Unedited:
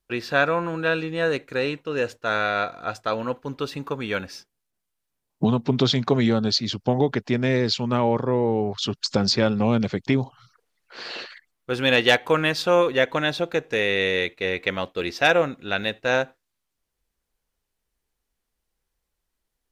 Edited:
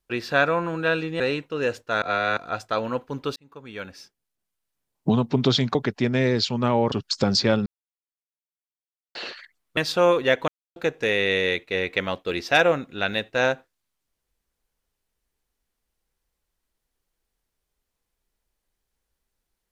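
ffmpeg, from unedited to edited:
ffmpeg -i in.wav -filter_complex "[0:a]asplit=12[link_01][link_02][link_03][link_04][link_05][link_06][link_07][link_08][link_09][link_10][link_11][link_12];[link_01]atrim=end=1.202[link_13];[link_02]atrim=start=1.548:end=2.372[link_14];[link_03]atrim=start=2.368:end=2.722,asetpts=PTS-STARTPTS,areverse[link_15];[link_04]atrim=start=2.718:end=3.71,asetpts=PTS-STARTPTS,afade=type=out:start_time=0.988:duration=0.004:curve=hsin[link_16];[link_05]atrim=start=3.71:end=6.102,asetpts=PTS-STARTPTS,afade=type=in:duration=1.76:curve=qsin[link_17];[link_06]atrim=start=7.038:end=8.212[link_18];[link_07]atrim=start=8.848:end=9.59,asetpts=PTS-STARTPTS,afade=type=out:start_time=0.738:duration=0.004:curve=hsin[link_19];[link_08]atrim=start=9.59:end=11.08,asetpts=PTS-STARTPTS,volume=0[link_20];[link_09]atrim=start=11.08:end=11.702,asetpts=PTS-STARTPTS,afade=type=in:duration=0.004:curve=hsin[link_21];[link_10]atrim=start=12.468:end=13.18,asetpts=PTS-STARTPTS,afade=type=out:start_time=0.708:duration=0.004:curve=hsin[link_22];[link_11]atrim=start=13.18:end=13.46,asetpts=PTS-STARTPTS,volume=0[link_23];[link_12]atrim=start=13.46,asetpts=PTS-STARTPTS,afade=type=in:duration=0.004:curve=hsin[link_24];[link_13][link_14]acrossfade=duration=0.004:curve1=hsin:curve2=hsin[link_25];[link_25][link_15]acrossfade=duration=0.004:curve1=hsin:curve2=hsin[link_26];[link_16][link_17]concat=n=2:v=0:a=1[link_27];[link_26][link_27]acrossfade=duration=0.004:curve1=hsin:curve2=hsin[link_28];[link_28][link_18]acrossfade=duration=0.004:curve1=hsin:curve2=hsin[link_29];[link_19][link_20][link_21]concat=n=3:v=0:a=1[link_30];[link_29][link_30]acrossfade=duration=0.004:curve1=hsin:curve2=hsin[link_31];[link_22][link_23][link_24]concat=n=3:v=0:a=1[link_32];[link_31][link_32]acrossfade=duration=0.004:curve1=hsin:curve2=hsin" out.wav

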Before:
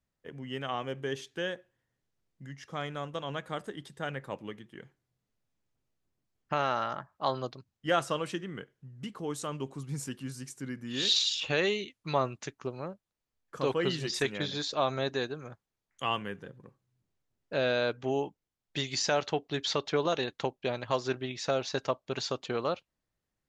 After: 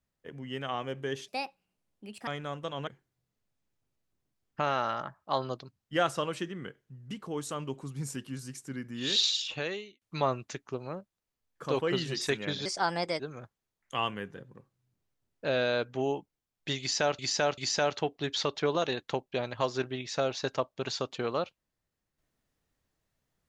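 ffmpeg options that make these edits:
ffmpeg -i in.wav -filter_complex "[0:a]asplit=9[link_01][link_02][link_03][link_04][link_05][link_06][link_07][link_08][link_09];[link_01]atrim=end=1.284[link_10];[link_02]atrim=start=1.28:end=2.78,asetpts=PTS-STARTPTS,asetrate=66591,aresample=44100[link_11];[link_03]atrim=start=2.776:end=3.382[link_12];[link_04]atrim=start=4.798:end=11.94,asetpts=PTS-STARTPTS,afade=type=out:start_time=6.402:duration=0.74[link_13];[link_05]atrim=start=11.94:end=14.584,asetpts=PTS-STARTPTS,afade=type=in:duration=0.004:curve=hsin[link_14];[link_06]atrim=start=14.58:end=15.28,asetpts=PTS-STARTPTS,asetrate=56889,aresample=44100,atrim=end_sample=23930,asetpts=PTS-STARTPTS[link_15];[link_07]atrim=start=15.276:end=19.272[link_16];[link_08]atrim=start=18.878:end=19.272[link_17];[link_09]atrim=start=18.878[link_18];[link_10][link_11]acrossfade=duration=0.004:curve1=hsin:curve2=hsin[link_19];[link_19][link_12]acrossfade=duration=0.004:curve1=hsin:curve2=hsin[link_20];[link_13][link_14]concat=n=2:v=0:a=1[link_21];[link_20][link_21]acrossfade=duration=0.004:curve1=hsin:curve2=hsin[link_22];[link_22][link_15]acrossfade=duration=0.004:curve1=hsin:curve2=hsin[link_23];[link_23][link_16]acrossfade=duration=0.004:curve1=hsin:curve2=hsin[link_24];[link_24][link_17]acrossfade=duration=0.004:curve1=hsin:curve2=hsin[link_25];[link_25][link_18]acrossfade=duration=0.004:curve1=hsin:curve2=hsin" out.wav

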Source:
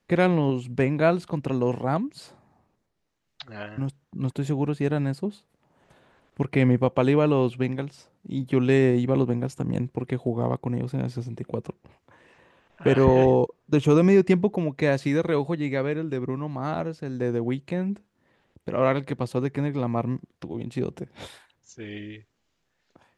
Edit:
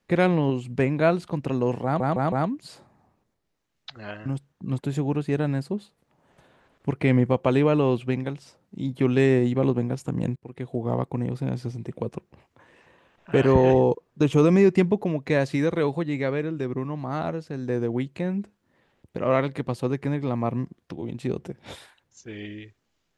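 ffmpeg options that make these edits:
ffmpeg -i in.wav -filter_complex "[0:a]asplit=5[link_01][link_02][link_03][link_04][link_05];[link_01]atrim=end=2.002[link_06];[link_02]atrim=start=1.838:end=2.002[link_07];[link_03]atrim=start=1.838:end=2.002[link_08];[link_04]atrim=start=1.838:end=9.88,asetpts=PTS-STARTPTS,afade=type=out:start_time=8.038:duration=0.004:curve=hsin:silence=0.0668344[link_09];[link_05]atrim=start=9.88,asetpts=PTS-STARTPTS,afade=type=in:duration=0.55:silence=0.0668344[link_10];[link_06][link_07]acrossfade=duration=0.004:curve1=hsin:curve2=hsin[link_11];[link_11][link_08]acrossfade=duration=0.004:curve1=hsin:curve2=hsin[link_12];[link_09][link_10]concat=n=2:v=0:a=1[link_13];[link_12][link_13]acrossfade=duration=0.004:curve1=hsin:curve2=hsin" out.wav

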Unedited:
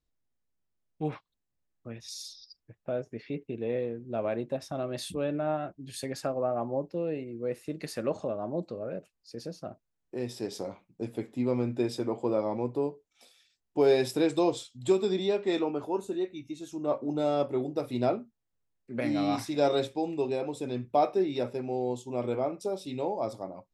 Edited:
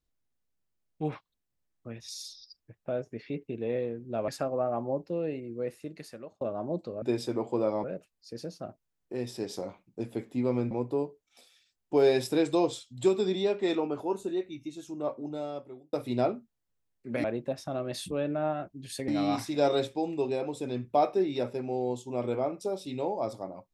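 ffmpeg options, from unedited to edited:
ffmpeg -i in.wav -filter_complex "[0:a]asplit=9[link_01][link_02][link_03][link_04][link_05][link_06][link_07][link_08][link_09];[link_01]atrim=end=4.282[link_10];[link_02]atrim=start=6.118:end=8.25,asetpts=PTS-STARTPTS,afade=type=out:start_time=1.252:duration=0.88[link_11];[link_03]atrim=start=8.25:end=8.862,asetpts=PTS-STARTPTS,afade=type=in:duration=0.004:curve=hsin[link_12];[link_04]atrim=start=11.728:end=12.552[link_13];[link_05]atrim=start=8.858:end=11.732[link_14];[link_06]atrim=start=12.548:end=17.77,asetpts=PTS-STARTPTS,afade=type=out:start_time=3.932:duration=1.29[link_15];[link_07]atrim=start=17.77:end=19.082,asetpts=PTS-STARTPTS,afade=type=in:duration=0.004:curve=hsin[link_16];[link_08]atrim=start=4.278:end=6.122[link_17];[link_09]atrim=start=19.078[link_18];[link_11][link_12]concat=n=2:v=0:a=1[link_19];[link_10][link_19]acrossfade=duration=0.004:curve1=hsin:curve2=hsin[link_20];[link_20][link_13]acrossfade=duration=0.004:curve1=hsin:curve2=hsin[link_21];[link_21][link_14]acrossfade=duration=0.004:curve1=hsin:curve2=hsin[link_22];[link_15][link_16]concat=n=2:v=0:a=1[link_23];[link_22][link_23]acrossfade=duration=0.004:curve1=hsin:curve2=hsin[link_24];[link_24][link_17]acrossfade=duration=0.004:curve1=hsin:curve2=hsin[link_25];[link_25][link_18]acrossfade=duration=0.004:curve1=hsin:curve2=hsin" out.wav

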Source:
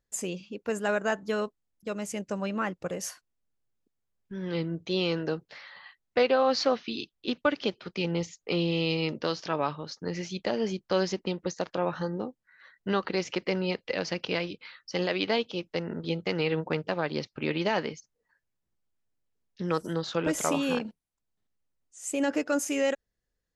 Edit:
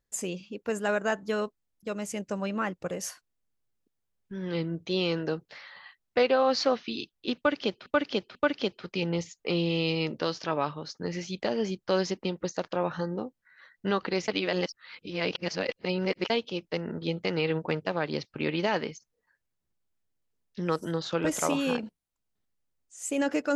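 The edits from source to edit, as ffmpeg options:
ffmpeg -i in.wav -filter_complex "[0:a]asplit=5[link_01][link_02][link_03][link_04][link_05];[link_01]atrim=end=7.862[link_06];[link_02]atrim=start=7.368:end=7.862[link_07];[link_03]atrim=start=7.368:end=13.302[link_08];[link_04]atrim=start=13.298:end=15.322,asetpts=PTS-STARTPTS,areverse[link_09];[link_05]atrim=start=15.318[link_10];[link_06][link_07]acrossfade=duration=0.004:curve1=hsin:curve2=hsin[link_11];[link_11][link_08]acrossfade=duration=0.004:curve1=hsin:curve2=hsin[link_12];[link_12][link_09]acrossfade=duration=0.004:curve1=hsin:curve2=hsin[link_13];[link_13][link_10]acrossfade=duration=0.004:curve1=hsin:curve2=hsin" out.wav

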